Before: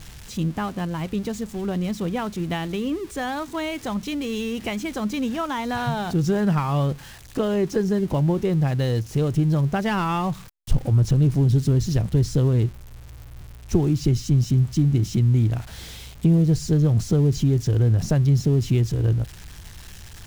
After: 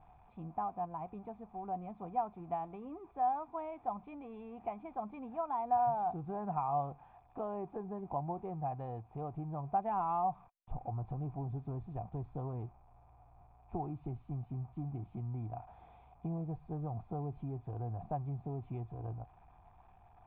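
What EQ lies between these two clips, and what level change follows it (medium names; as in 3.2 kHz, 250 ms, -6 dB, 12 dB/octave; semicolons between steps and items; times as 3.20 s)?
cascade formant filter a; peaking EQ 560 Hz -6 dB 0.78 oct; band-stop 1.1 kHz, Q 6; +6.0 dB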